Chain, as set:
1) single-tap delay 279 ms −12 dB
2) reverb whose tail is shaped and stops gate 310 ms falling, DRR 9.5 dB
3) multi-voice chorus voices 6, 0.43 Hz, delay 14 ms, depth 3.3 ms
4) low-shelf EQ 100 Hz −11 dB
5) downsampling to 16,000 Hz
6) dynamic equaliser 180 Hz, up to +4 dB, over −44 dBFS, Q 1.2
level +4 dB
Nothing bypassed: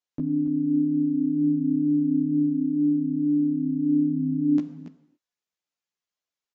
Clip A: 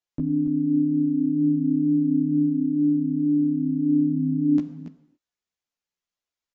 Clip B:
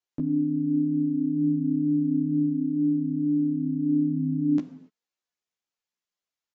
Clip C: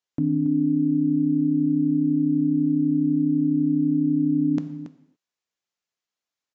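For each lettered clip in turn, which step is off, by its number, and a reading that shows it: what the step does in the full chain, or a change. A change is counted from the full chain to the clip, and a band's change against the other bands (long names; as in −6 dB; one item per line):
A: 4, change in integrated loudness +1.5 LU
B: 1, change in integrated loudness −1.5 LU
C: 3, change in integrated loudness +2.0 LU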